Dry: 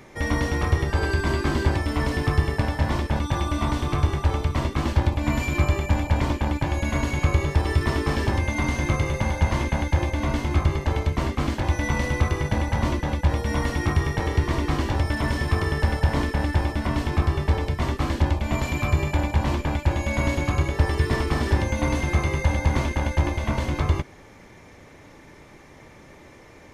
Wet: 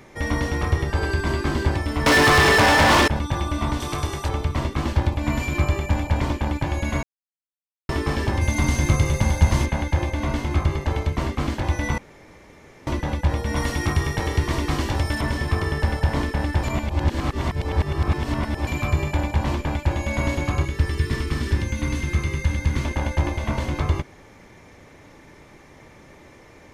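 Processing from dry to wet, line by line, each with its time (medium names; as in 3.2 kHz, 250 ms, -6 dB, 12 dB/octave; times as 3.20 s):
2.06–3.08 s: overdrive pedal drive 35 dB, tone 5.2 kHz, clips at -8 dBFS
3.80–4.29 s: tone controls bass -6 dB, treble +10 dB
7.03–7.89 s: mute
8.41–9.66 s: tone controls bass +5 dB, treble +9 dB
11.98–12.87 s: room tone
13.56–15.21 s: treble shelf 3.4 kHz +7 dB
16.63–18.67 s: reverse
20.65–22.85 s: peaking EQ 720 Hz -14 dB 1.1 oct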